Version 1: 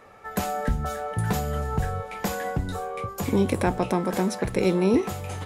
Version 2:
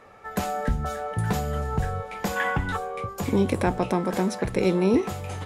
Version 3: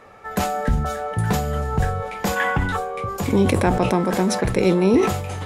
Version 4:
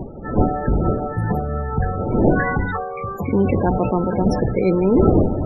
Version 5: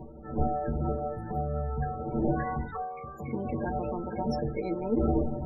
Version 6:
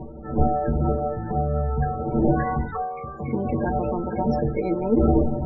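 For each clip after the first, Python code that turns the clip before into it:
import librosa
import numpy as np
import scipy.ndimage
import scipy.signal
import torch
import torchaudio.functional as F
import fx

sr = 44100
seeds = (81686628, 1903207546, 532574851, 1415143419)

y1 = fx.spec_box(x, sr, start_s=2.36, length_s=0.41, low_hz=760.0, high_hz=3600.0, gain_db=11)
y1 = fx.high_shelf(y1, sr, hz=11000.0, db=-7.5)
y2 = fx.sustainer(y1, sr, db_per_s=58.0)
y2 = F.gain(torch.from_numpy(y2), 4.0).numpy()
y3 = fx.dmg_wind(y2, sr, seeds[0], corner_hz=380.0, level_db=-22.0)
y3 = fx.spec_topn(y3, sr, count=32)
y4 = fx.stiff_resonator(y3, sr, f0_hz=68.0, decay_s=0.32, stiffness=0.03)
y4 = F.gain(torch.from_numpy(y4), -4.0).numpy()
y5 = fx.air_absorb(y4, sr, metres=240.0)
y5 = F.gain(torch.from_numpy(y5), 8.0).numpy()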